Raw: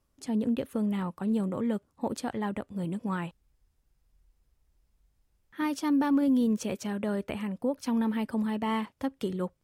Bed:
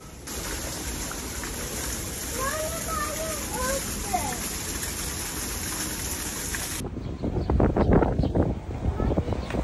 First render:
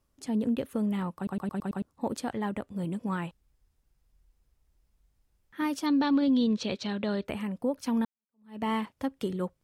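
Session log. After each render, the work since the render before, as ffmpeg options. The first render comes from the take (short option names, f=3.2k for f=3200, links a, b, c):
-filter_complex "[0:a]asettb=1/sr,asplit=3[a][b][c];[a]atrim=end=5.864[d];[b]atrim=start=5.86:end=7.25,asetpts=PTS-STARTPTS,afade=t=in:d=0.004:c=qsin,afade=t=out:st=1.386:d=0.004:c=qsin,lowpass=f=4k:t=q:w=5.5[e];[c]atrim=start=7.246[f];[d][e]acrossfade=d=0.004:c1=hsin:c2=qsin[g];[g][f]acrossfade=d=0.004:c1=qsin:c2=hsin,asplit=8[h][i][j][k][l][m][n][o];[h]atrim=end=1.272[p];[i]atrim=start=1.158:end=1.272[q];[j]atrim=start=1.158:end=1.272[r];[k]atrim=start=1.158:end=1.272[s];[l]atrim=start=1.158:end=1.272[t];[m]atrim=start=1.158:end=1.272[u];[n]atrim=start=1.818:end=8.05,asetpts=PTS-STARTPTS,afade=t=out:st=6.228:d=0.004:c=hsin[v];[o]atrim=start=8.05,asetpts=PTS-STARTPTS,afade=t=in:d=0.56:c=exp[w];[p][q]acrossfade=d=0.004:c1=hsin:c2=hsin[x];[x][r]acrossfade=d=0.004:c1=hsin:c2=hsin[y];[y][s]acrossfade=d=0.004:c1=hsin:c2=hsin[z];[z][t]acrossfade=d=0.004:c1=hsin:c2=hsin[aa];[aa][u]acrossfade=d=0.004:c1=hsin:c2=hsin[ab];[v][w]concat=n=2:v=0:a=1[ac];[ab][ac]acrossfade=d=0.004:c1=hsin:c2=hsin"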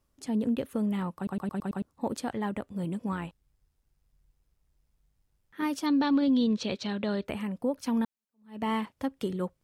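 -filter_complex "[0:a]asettb=1/sr,asplit=3[a][b][c];[a]atrim=end=3.124[d];[b]atrim=start=3.12:end=5.63,asetpts=PTS-STARTPTS,afade=t=in:d=0.004:c=qsin,afade=t=out:st=2.506:d=0.004:c=qsin,tremolo=f=100:d=0.462[e];[c]atrim=start=5.626[f];[d][e]acrossfade=d=0.004:c1=hsin:c2=qsin[g];[g][f]acrossfade=d=0.004:c1=qsin:c2=hsin"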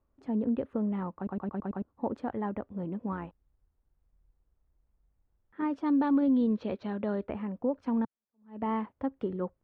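-af "lowpass=1.3k,equalizer=f=150:t=o:w=0.55:g=-7"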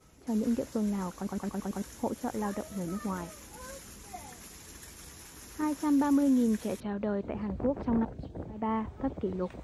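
-filter_complex "[1:a]volume=-17.5dB[a];[0:a][a]amix=inputs=2:normalize=0"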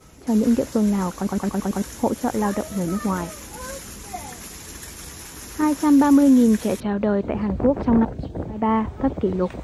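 -af "volume=11dB"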